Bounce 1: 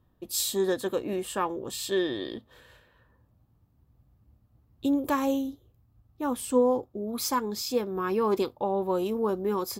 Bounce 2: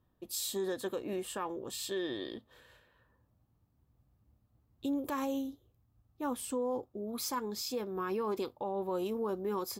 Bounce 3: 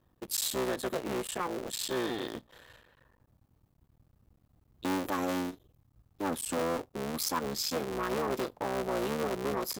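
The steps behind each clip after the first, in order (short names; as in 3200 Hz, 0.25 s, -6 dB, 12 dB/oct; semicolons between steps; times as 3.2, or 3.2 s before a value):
low shelf 200 Hz -3.5 dB; limiter -22 dBFS, peak gain reduction 8 dB; gain -5 dB
cycle switcher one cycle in 3, muted; core saturation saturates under 530 Hz; gain +6.5 dB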